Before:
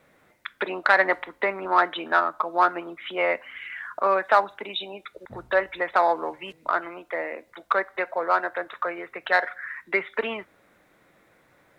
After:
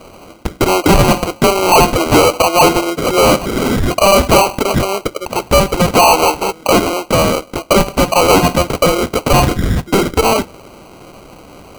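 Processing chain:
mid-hump overdrive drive 30 dB, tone 3,500 Hz, clips at −3 dBFS
decimation without filtering 25×
level +2.5 dB

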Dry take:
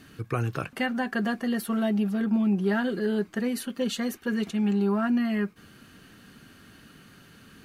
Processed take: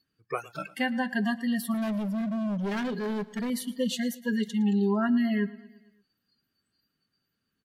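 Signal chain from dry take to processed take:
noise reduction from a noise print of the clip's start 30 dB
0:01.74–0:03.50: hard clipping −28 dBFS, distortion −10 dB
repeating echo 113 ms, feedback 58%, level −20 dB

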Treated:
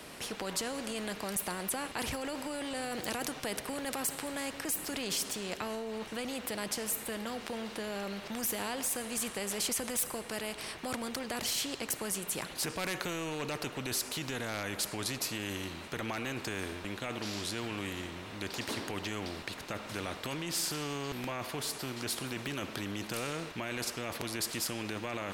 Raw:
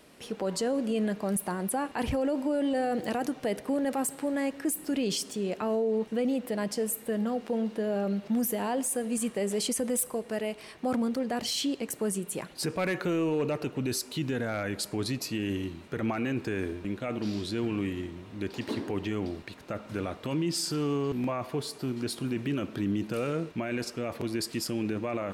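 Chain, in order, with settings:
every bin compressed towards the loudest bin 2 to 1
level +6 dB

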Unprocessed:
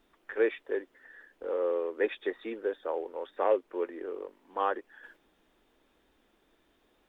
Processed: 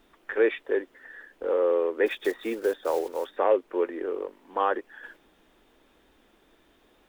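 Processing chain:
0:02.06–0:03.38: one scale factor per block 5 bits
in parallel at +2 dB: brickwall limiter −23 dBFS, peak gain reduction 8 dB

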